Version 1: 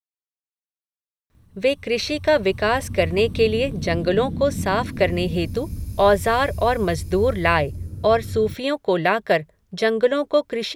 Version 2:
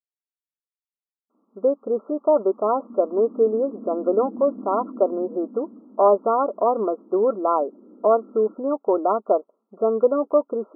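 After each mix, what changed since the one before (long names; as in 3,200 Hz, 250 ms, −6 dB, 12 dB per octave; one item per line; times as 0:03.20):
master: add linear-phase brick-wall band-pass 210–1,400 Hz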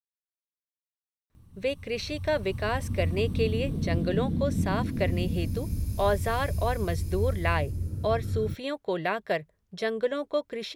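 speech −9.5 dB
master: remove linear-phase brick-wall band-pass 210–1,400 Hz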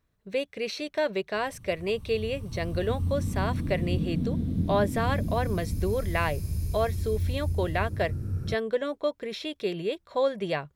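speech: entry −1.30 s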